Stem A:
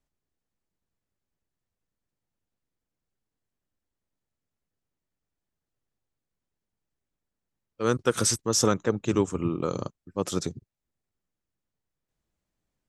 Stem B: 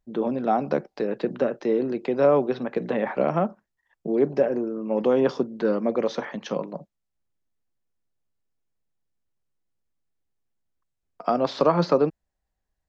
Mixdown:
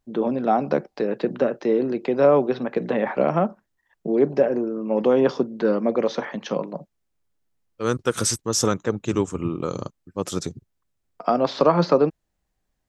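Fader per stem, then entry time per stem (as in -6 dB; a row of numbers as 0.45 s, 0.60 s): +1.5 dB, +2.5 dB; 0.00 s, 0.00 s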